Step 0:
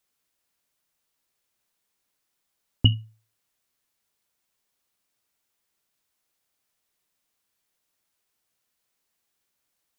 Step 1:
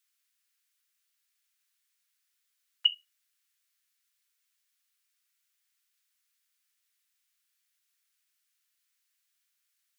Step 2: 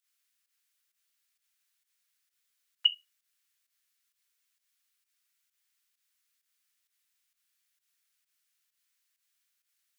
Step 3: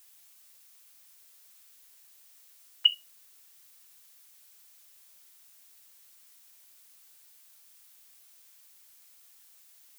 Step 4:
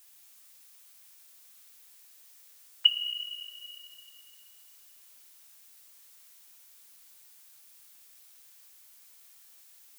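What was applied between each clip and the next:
inverse Chebyshev high-pass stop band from 240 Hz, stop band 80 dB
volume shaper 131 bpm, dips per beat 1, -12 dB, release 105 ms
added noise blue -61 dBFS; trim +3 dB
plate-style reverb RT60 3.1 s, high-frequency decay 0.85×, DRR 3 dB

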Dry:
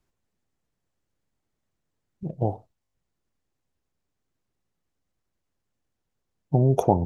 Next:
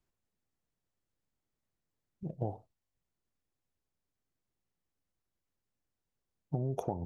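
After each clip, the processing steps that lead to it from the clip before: compression 12:1, threshold -22 dBFS, peak gain reduction 10.5 dB; trim -7.5 dB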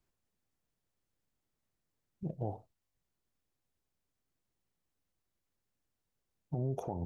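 peak limiter -27.5 dBFS, peak gain reduction 7.5 dB; trim +1.5 dB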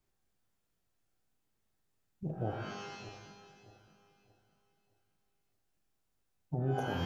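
backward echo that repeats 309 ms, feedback 57%, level -13.5 dB; pitch-shifted reverb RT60 1.1 s, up +12 st, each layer -2 dB, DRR 3.5 dB

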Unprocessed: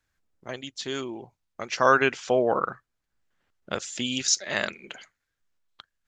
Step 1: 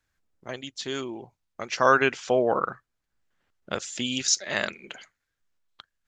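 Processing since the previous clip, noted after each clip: no audible change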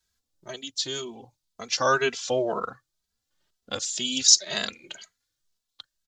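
resonant high shelf 3 kHz +9 dB, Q 1.5; endless flanger 2.7 ms +2 Hz

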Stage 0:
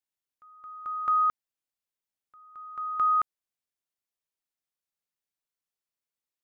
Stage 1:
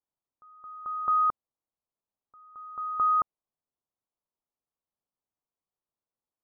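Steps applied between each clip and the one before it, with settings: steep low-pass 1.2 kHz; trim +4 dB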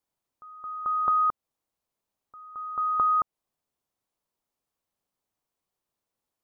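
compression 3:1, threshold -31 dBFS, peak gain reduction 7 dB; trim +7.5 dB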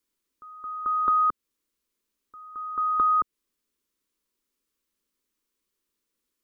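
static phaser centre 300 Hz, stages 4; trim +6 dB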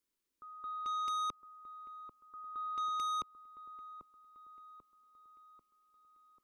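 saturation -28 dBFS, distortion -9 dB; time-frequency box 5.07–5.31 s, 370–1300 Hz +8 dB; feedback echo behind a low-pass 791 ms, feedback 54%, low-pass 1.1 kHz, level -9.5 dB; trim -6 dB

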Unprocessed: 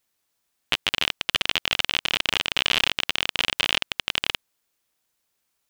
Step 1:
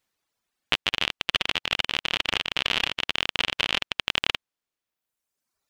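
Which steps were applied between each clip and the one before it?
in parallel at +1.5 dB: gain riding; on the sum: treble shelf 6.8 kHz -10 dB; reverb removal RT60 1.3 s; trim -5.5 dB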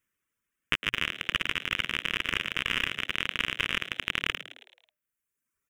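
static phaser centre 1.8 kHz, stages 4; on a send: frequency-shifting echo 108 ms, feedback 50%, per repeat +120 Hz, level -13 dB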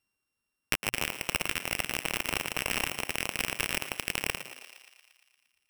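sorted samples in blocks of 16 samples; thinning echo 116 ms, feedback 69%, high-pass 360 Hz, level -15.5 dB; dynamic bell 4.4 kHz, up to -6 dB, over -46 dBFS, Q 1.1

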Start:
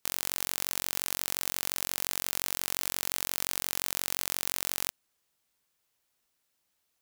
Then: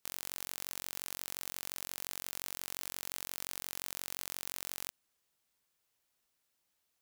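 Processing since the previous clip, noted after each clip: peak limiter -10 dBFS, peak gain reduction 6 dB; trim -3 dB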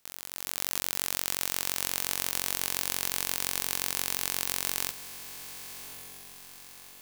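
spectrogram pixelated in time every 50 ms; level rider gain up to 13.5 dB; echo that smears into a reverb 1161 ms, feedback 50%, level -12 dB; trim +1.5 dB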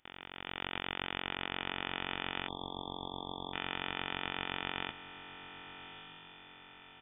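comb 1.9 ms, depth 35%; spectral selection erased 2.48–3.53 s, 250–2300 Hz; frequency inversion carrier 3.5 kHz

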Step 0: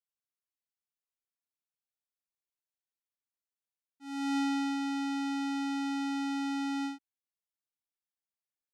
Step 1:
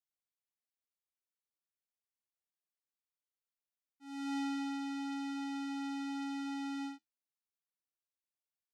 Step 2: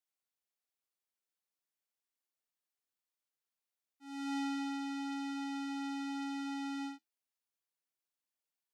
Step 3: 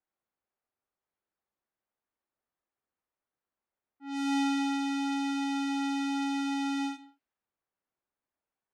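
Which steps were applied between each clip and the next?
flange 0.91 Hz, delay 9.7 ms, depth 1.7 ms, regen -66%; trim -2.5 dB
high-pass 210 Hz; trim +1 dB
gated-style reverb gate 220 ms falling, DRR 11 dB; level-controlled noise filter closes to 1.4 kHz, open at -38.5 dBFS; trim +8.5 dB

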